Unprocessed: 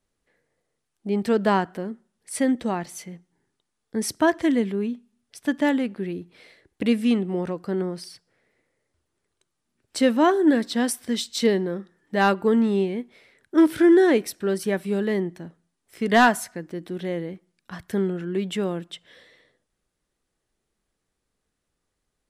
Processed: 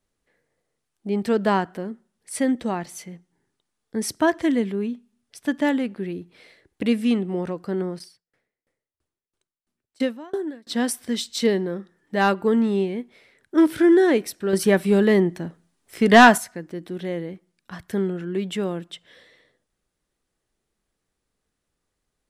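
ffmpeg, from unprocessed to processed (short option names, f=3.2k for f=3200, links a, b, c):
-filter_complex "[0:a]asplit=3[a][b][c];[a]afade=t=out:st=7.98:d=0.02[d];[b]aeval=exprs='val(0)*pow(10,-31*if(lt(mod(3*n/s,1),2*abs(3)/1000),1-mod(3*n/s,1)/(2*abs(3)/1000),(mod(3*n/s,1)-2*abs(3)/1000)/(1-2*abs(3)/1000))/20)':c=same,afade=t=in:st=7.98:d=0.02,afade=t=out:st=10.68:d=0.02[e];[c]afade=t=in:st=10.68:d=0.02[f];[d][e][f]amix=inputs=3:normalize=0,asettb=1/sr,asplit=3[g][h][i];[g]atrim=end=14.534[j];[h]atrim=start=14.53:end=16.38,asetpts=PTS-STARTPTS,afade=t=in:d=0.004:c=qsin,afade=t=out:st=1.846:d=0.004:c=qsin,acontrast=88[k];[i]atrim=start=16.376[l];[j][k]acrossfade=d=0.004:c1=hsin:c2=qsin[m];[m][l]acrossfade=d=0.004:c1=qsin:c2=hsin"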